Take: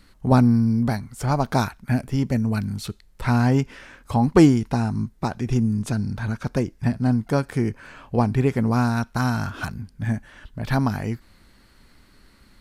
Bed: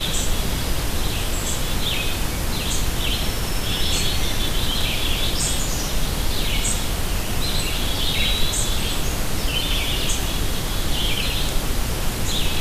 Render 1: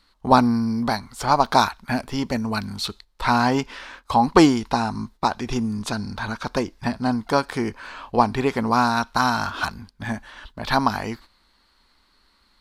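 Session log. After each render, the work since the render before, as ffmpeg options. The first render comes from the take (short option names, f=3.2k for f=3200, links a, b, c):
-af "equalizer=f=125:t=o:w=1:g=-10,equalizer=f=1k:t=o:w=1:g=10,equalizer=f=4k:t=o:w=1:g=11,agate=range=-11dB:threshold=-42dB:ratio=16:detection=peak"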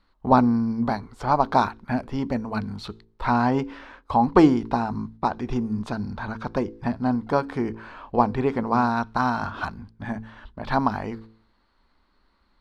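-af "lowpass=f=1k:p=1,bandreject=f=55.59:t=h:w=4,bandreject=f=111.18:t=h:w=4,bandreject=f=166.77:t=h:w=4,bandreject=f=222.36:t=h:w=4,bandreject=f=277.95:t=h:w=4,bandreject=f=333.54:t=h:w=4,bandreject=f=389.13:t=h:w=4,bandreject=f=444.72:t=h:w=4,bandreject=f=500.31:t=h:w=4"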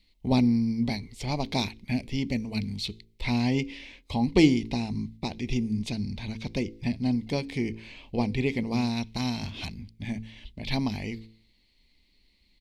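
-af "firequalizer=gain_entry='entry(130,0);entry(1400,-27);entry(2100,7)':delay=0.05:min_phase=1"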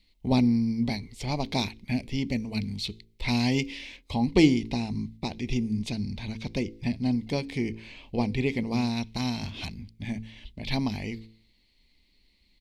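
-filter_complex "[0:a]asettb=1/sr,asplit=3[a][b][c];[a]atrim=end=3.284[d];[b]atrim=start=3.28:end=3.97,asetpts=PTS-STARTPTS,afade=t=in:d=0.004:c=qsin,afade=t=out:st=0.686:d=0.004:c=qsin,highshelf=f=2.9k:g=8[e];[c]atrim=start=3.966[f];[d][e]acrossfade=d=0.004:c1=hsin:c2=qsin[g];[g][f]acrossfade=d=0.004:c1=qsin:c2=hsin"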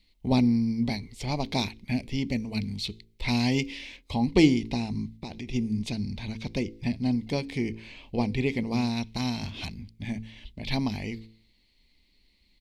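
-filter_complex "[0:a]asplit=3[a][b][c];[a]afade=t=out:st=5.13:d=0.02[d];[b]acompressor=threshold=-32dB:ratio=6:attack=3.2:release=140:knee=1:detection=peak,afade=t=in:st=5.13:d=0.02,afade=t=out:st=5.53:d=0.02[e];[c]afade=t=in:st=5.53:d=0.02[f];[d][e][f]amix=inputs=3:normalize=0"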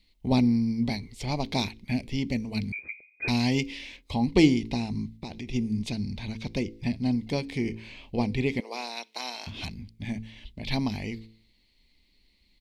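-filter_complex "[0:a]asettb=1/sr,asplit=3[a][b][c];[a]atrim=end=2.724[d];[b]atrim=start=2.72:end=3.28,asetpts=PTS-STARTPTS,afade=t=in:d=0.004:c=qsin,afade=t=out:st=0.556:d=0.004:c=qsin,lowpass=f=2.1k:t=q:w=0.5098,lowpass=f=2.1k:t=q:w=0.6013,lowpass=f=2.1k:t=q:w=0.9,lowpass=f=2.1k:t=q:w=2.563,afreqshift=-2500[e];[c]atrim=start=3.276[f];[d][e]acrossfade=d=0.004:c1=hsin:c2=qsin[g];[g][f]acrossfade=d=0.004:c1=qsin:c2=hsin,asettb=1/sr,asplit=3[h][i][j];[h]atrim=end=7.634[k];[i]atrim=start=7.63:end=8.06,asetpts=PTS-STARTPTS,afade=t=in:d=0.004:c=qsin,afade=t=out:st=0.426:d=0.004:c=qsin,asplit=2[l][m];[m]adelay=26,volume=-8.5dB[n];[l][n]amix=inputs=2:normalize=0,atrim=end_sample=18963[o];[j]atrim=start=8.056[p];[k][o]acrossfade=d=0.004:c1=hsin:c2=qsin[q];[q][p]acrossfade=d=0.004:c1=qsin:c2=hsin,asettb=1/sr,asplit=3[r][s][t];[r]atrim=end=8.604[u];[s]atrim=start=8.6:end=9.47,asetpts=PTS-STARTPTS,afade=t=in:d=0.004:c=qsin,afade=t=out:st=0.866:d=0.004:c=qsin,highpass=f=440:w=0.5412,highpass=f=440:w=1.3066[v];[t]atrim=start=9.466[w];[u][v]acrossfade=d=0.004:c1=hsin:c2=qsin[x];[x][w]acrossfade=d=0.004:c1=qsin:c2=hsin"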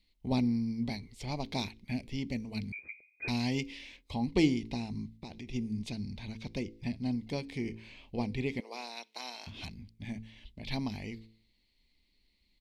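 -af "volume=-7dB"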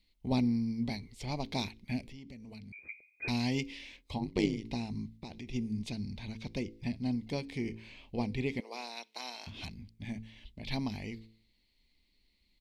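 -filter_complex "[0:a]asettb=1/sr,asplit=3[a][b][c];[a]atrim=end=2.084[d];[b]atrim=start=2.08:end=2.88,asetpts=PTS-STARTPTS,afade=t=in:d=0.004:c=qsin,afade=t=out:st=0.796:d=0.004:c=qsin,acompressor=threshold=-46dB:ratio=5:attack=3.2:release=140:knee=1:detection=peak[e];[c]atrim=start=2.876[f];[d][e]acrossfade=d=0.004:c1=hsin:c2=qsin[g];[g][f]acrossfade=d=0.004:c1=qsin:c2=hsin,asplit=3[h][i][j];[h]afade=t=out:st=4.17:d=0.02[k];[i]tremolo=f=100:d=0.974,afade=t=in:st=4.17:d=0.02,afade=t=out:st=4.63:d=0.02[l];[j]afade=t=in:st=4.63:d=0.02[m];[k][l][m]amix=inputs=3:normalize=0"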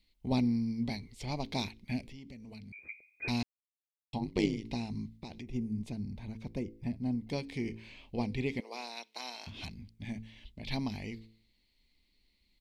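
-filter_complex "[0:a]asettb=1/sr,asplit=3[a][b][c];[a]atrim=end=5.424[d];[b]atrim=start=5.42:end=7.3,asetpts=PTS-STARTPTS,afade=t=in:d=0.004:c=qsin,afade=t=out:st=1.876:d=0.004:c=qsin,equalizer=f=3.9k:t=o:w=2.1:g=-12[e];[c]atrim=start=7.296[f];[d][e]acrossfade=d=0.004:c1=hsin:c2=qsin[g];[g][f]acrossfade=d=0.004:c1=qsin:c2=hsin,asplit=3[h][i][j];[h]atrim=end=3.43,asetpts=PTS-STARTPTS,afade=t=out:st=3.426:d=0.004:c=hsin[k];[i]atrim=start=3.43:end=4.13,asetpts=PTS-STARTPTS,volume=0[l];[j]atrim=start=4.13,asetpts=PTS-STARTPTS,afade=t=in:d=0.004:c=hsin[m];[k][l][m]concat=n=3:v=0:a=1"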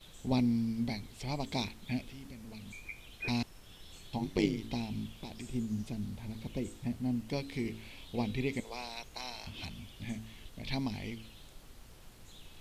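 -filter_complex "[1:a]volume=-31.5dB[a];[0:a][a]amix=inputs=2:normalize=0"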